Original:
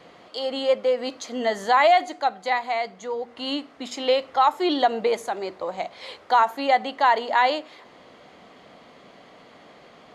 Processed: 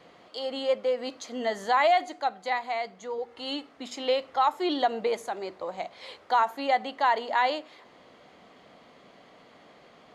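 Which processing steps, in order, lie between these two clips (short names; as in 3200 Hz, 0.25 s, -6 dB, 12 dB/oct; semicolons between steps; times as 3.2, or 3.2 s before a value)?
3.18–3.69 comb 2.3 ms, depth 51%; gain -5 dB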